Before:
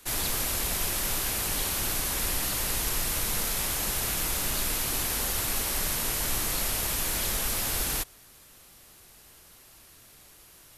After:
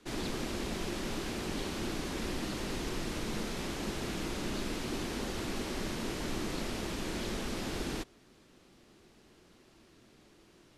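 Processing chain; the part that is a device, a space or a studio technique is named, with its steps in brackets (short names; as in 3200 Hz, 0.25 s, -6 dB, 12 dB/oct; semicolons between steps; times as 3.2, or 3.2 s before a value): inside a cardboard box (LPF 5100 Hz 12 dB/oct; small resonant body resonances 230/330 Hz, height 12 dB, ringing for 25 ms); gain -7.5 dB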